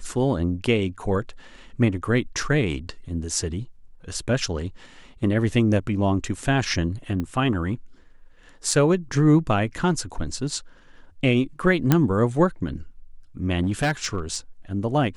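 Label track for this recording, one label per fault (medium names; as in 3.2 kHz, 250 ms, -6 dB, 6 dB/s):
7.200000	7.200000	pop -17 dBFS
8.710000	8.710000	dropout 2.2 ms
11.920000	11.920000	pop -4 dBFS
13.630000	14.360000	clipped -18 dBFS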